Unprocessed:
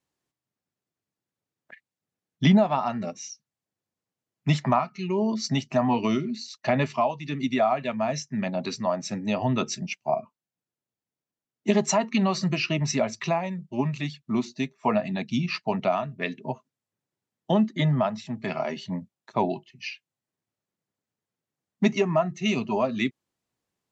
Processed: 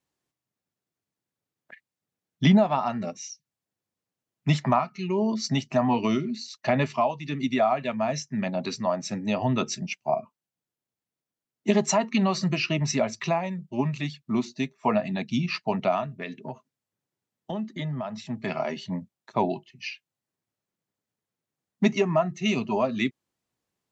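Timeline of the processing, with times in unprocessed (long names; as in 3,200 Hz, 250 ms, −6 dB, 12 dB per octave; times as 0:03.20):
0:03.17–0:03.44: gain on a spectral selection 210–1,700 Hz −15 dB
0:16.06–0:18.20: downward compressor 2.5 to 1, threshold −32 dBFS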